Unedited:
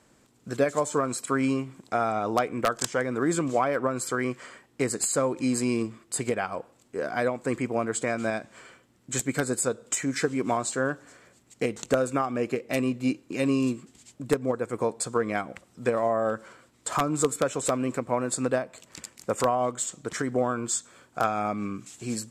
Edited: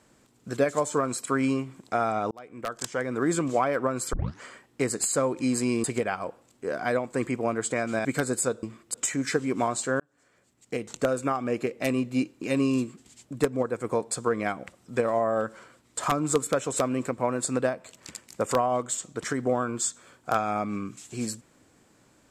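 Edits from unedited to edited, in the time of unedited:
0:02.31–0:03.22: fade in
0:04.13: tape start 0.29 s
0:05.84–0:06.15: move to 0:09.83
0:08.36–0:09.25: remove
0:10.89–0:12.62: fade in equal-power

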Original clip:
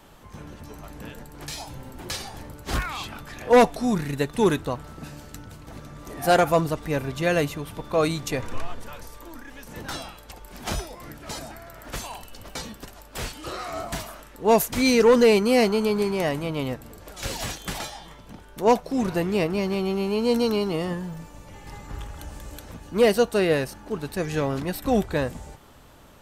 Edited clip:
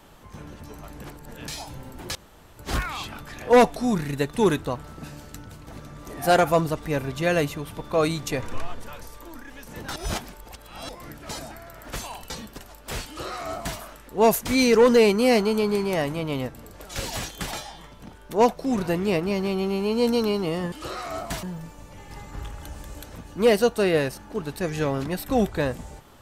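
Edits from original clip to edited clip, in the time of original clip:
0:01.04–0:01.47: reverse
0:02.15–0:02.59: fill with room tone
0:09.96–0:10.89: reverse
0:12.30–0:12.57: remove
0:13.34–0:14.05: duplicate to 0:20.99

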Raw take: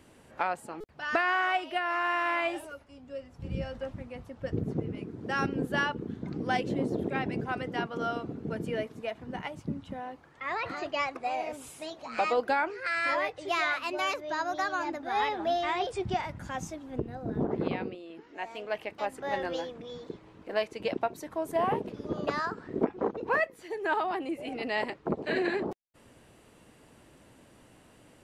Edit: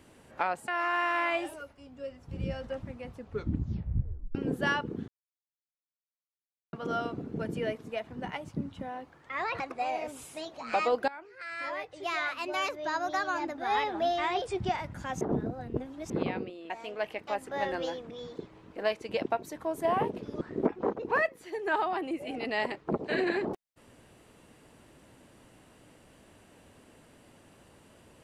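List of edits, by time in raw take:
0:00.68–0:01.79: remove
0:04.23: tape stop 1.23 s
0:06.19–0:07.84: silence
0:10.71–0:11.05: remove
0:12.53–0:14.27: fade in, from −19.5 dB
0:16.66–0:17.55: reverse
0:18.15–0:18.41: remove
0:22.12–0:22.59: remove

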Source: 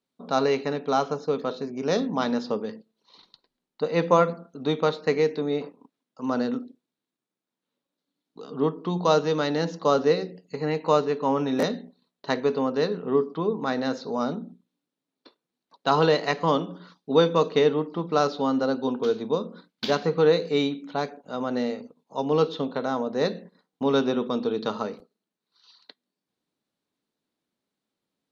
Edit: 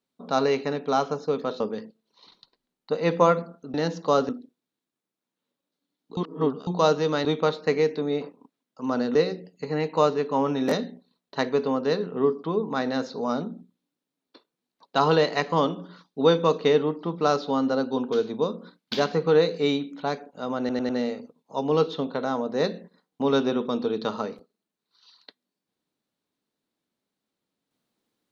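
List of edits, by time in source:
0:01.60–0:02.51: remove
0:04.65–0:06.55: swap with 0:09.51–0:10.06
0:08.43–0:08.93: reverse
0:21.50: stutter 0.10 s, 4 plays

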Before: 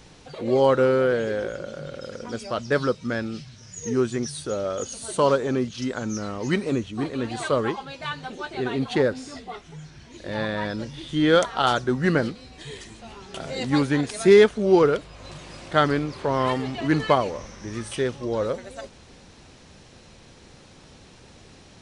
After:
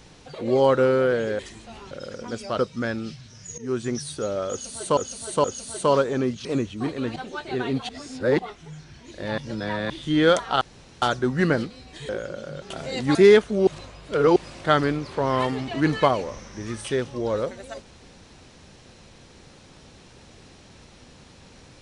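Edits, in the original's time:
0:01.39–0:01.92: swap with 0:12.74–0:13.26
0:02.60–0:02.87: remove
0:03.86–0:04.25: fade in equal-power, from −19.5 dB
0:04.78–0:05.25: repeat, 3 plays
0:05.79–0:06.62: remove
0:07.33–0:08.22: remove
0:08.95–0:09.45: reverse
0:10.44–0:10.96: reverse
0:11.67: splice in room tone 0.41 s
0:13.79–0:14.22: remove
0:14.74–0:15.43: reverse

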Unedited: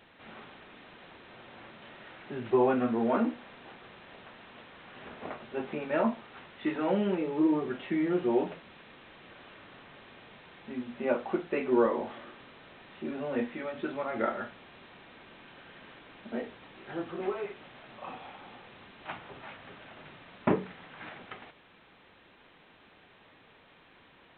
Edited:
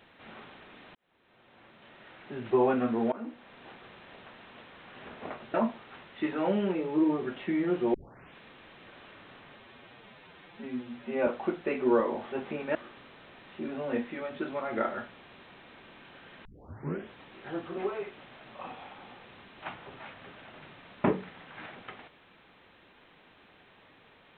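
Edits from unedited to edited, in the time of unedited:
0:00.95–0:02.55: fade in
0:03.12–0:03.67: fade in, from −21 dB
0:05.54–0:05.97: move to 0:12.18
0:08.37: tape start 0.41 s
0:09.99–0:11.13: time-stretch 1.5×
0:15.88: tape start 0.66 s

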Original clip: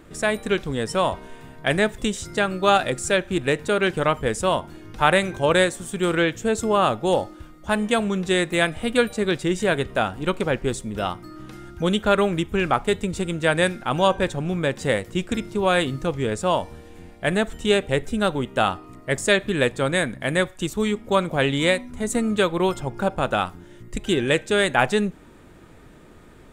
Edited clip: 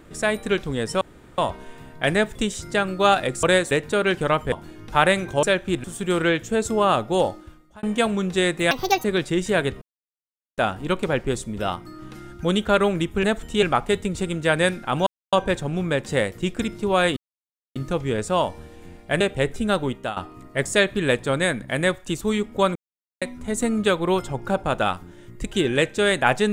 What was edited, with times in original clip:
0:01.01: splice in room tone 0.37 s
0:03.06–0:03.47: swap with 0:05.49–0:05.77
0:04.28–0:04.58: remove
0:07.25–0:07.76: fade out
0:08.64–0:09.18: play speed 161%
0:09.95: splice in silence 0.76 s
0:14.05: splice in silence 0.26 s
0:15.89: splice in silence 0.59 s
0:17.34–0:17.73: move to 0:12.61
0:18.43–0:18.69: fade out, to −18 dB
0:21.28–0:21.74: silence

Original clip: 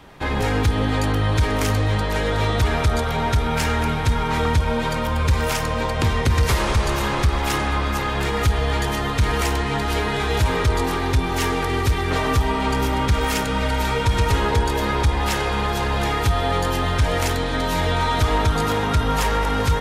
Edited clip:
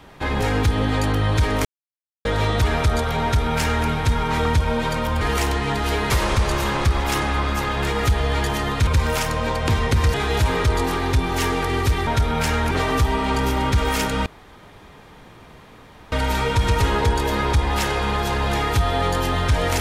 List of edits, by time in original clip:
0:01.65–0:02.25: silence
0:03.23–0:03.87: duplicate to 0:12.07
0:05.21–0:06.48: swap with 0:09.25–0:10.14
0:13.62: splice in room tone 1.86 s

